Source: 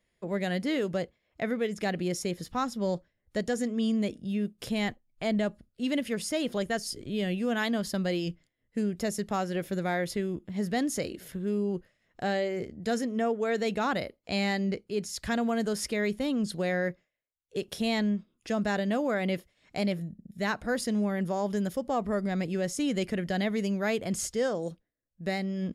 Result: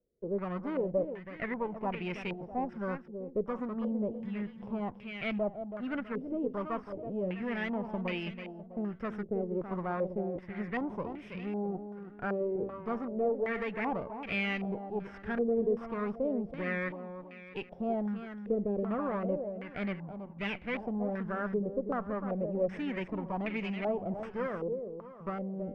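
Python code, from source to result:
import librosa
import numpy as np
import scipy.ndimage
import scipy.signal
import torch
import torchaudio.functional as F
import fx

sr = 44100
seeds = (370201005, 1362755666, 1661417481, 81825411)

y = fx.lower_of_two(x, sr, delay_ms=0.36)
y = fx.echo_feedback(y, sr, ms=326, feedback_pct=44, wet_db=-9)
y = fx.filter_held_lowpass(y, sr, hz=2.6, low_hz=460.0, high_hz=2400.0)
y = y * librosa.db_to_amplitude(-7.5)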